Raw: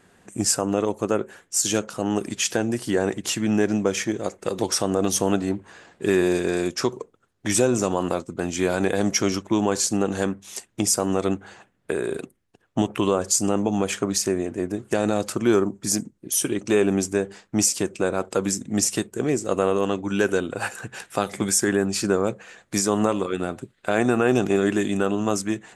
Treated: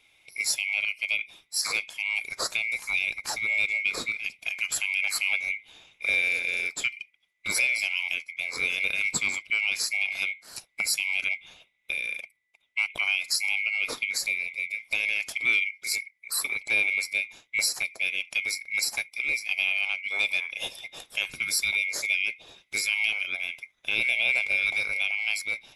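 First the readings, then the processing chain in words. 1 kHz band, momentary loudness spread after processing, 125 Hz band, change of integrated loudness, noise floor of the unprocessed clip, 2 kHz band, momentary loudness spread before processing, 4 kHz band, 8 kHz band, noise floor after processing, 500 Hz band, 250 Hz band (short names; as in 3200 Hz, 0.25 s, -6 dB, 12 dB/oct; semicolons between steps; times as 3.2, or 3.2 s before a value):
-15.5 dB, 8 LU, under -25 dB, -3.0 dB, -66 dBFS, +8.5 dB, 8 LU, +1.0 dB, -8.0 dB, -71 dBFS, -24.0 dB, -30.0 dB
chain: band-swap scrambler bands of 2000 Hz; gain -5.5 dB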